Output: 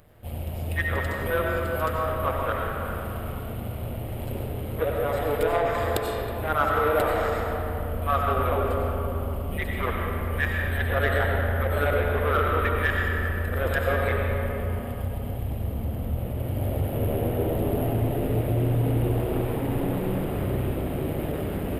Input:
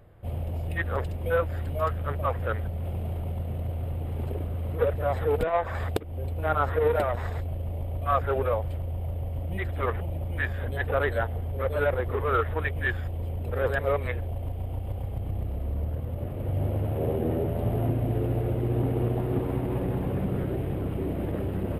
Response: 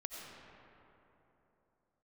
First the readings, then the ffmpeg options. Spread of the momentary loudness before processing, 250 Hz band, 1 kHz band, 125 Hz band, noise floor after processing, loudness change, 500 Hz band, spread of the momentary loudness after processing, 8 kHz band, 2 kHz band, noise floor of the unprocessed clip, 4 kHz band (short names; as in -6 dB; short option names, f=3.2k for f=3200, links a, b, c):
7 LU, +3.0 dB, +4.0 dB, +1.0 dB, -32 dBFS, +2.5 dB, +2.0 dB, 8 LU, n/a, +5.5 dB, -33 dBFS, +8.0 dB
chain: -filter_complex "[0:a]highshelf=f=5.7k:g=-7.5,crystalizer=i=6:c=0,tremolo=f=150:d=0.667[a];[1:a]atrim=start_sample=2205[b];[a][b]afir=irnorm=-1:irlink=0,asplit=2[c][d];[d]asoftclip=type=tanh:threshold=-26.5dB,volume=-9dB[e];[c][e]amix=inputs=2:normalize=0,volume=3dB"